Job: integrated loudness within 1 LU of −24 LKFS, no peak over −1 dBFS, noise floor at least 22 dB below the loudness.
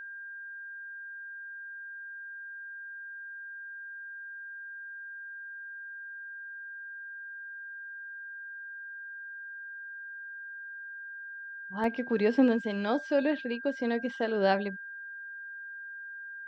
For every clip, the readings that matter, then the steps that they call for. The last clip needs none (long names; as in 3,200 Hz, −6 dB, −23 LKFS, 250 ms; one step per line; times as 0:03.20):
number of dropouts 1; longest dropout 1.6 ms; interfering tone 1,600 Hz; level of the tone −40 dBFS; integrated loudness −35.0 LKFS; sample peak −13.0 dBFS; target loudness −24.0 LKFS
→ repair the gap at 0:11.84, 1.6 ms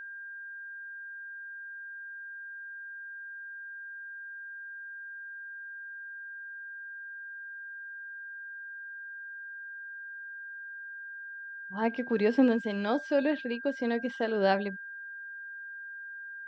number of dropouts 0; interfering tone 1,600 Hz; level of the tone −40 dBFS
→ notch filter 1,600 Hz, Q 30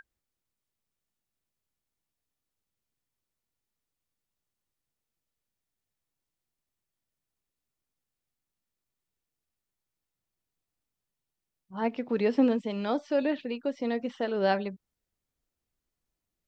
interfering tone none found; integrated loudness −29.5 LKFS; sample peak −13.0 dBFS; target loudness −24.0 LKFS
→ level +5.5 dB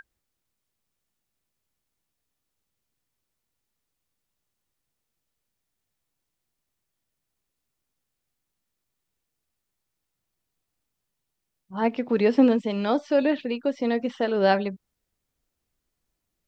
integrated loudness −24.0 LKFS; sample peak −7.5 dBFS; background noise floor −82 dBFS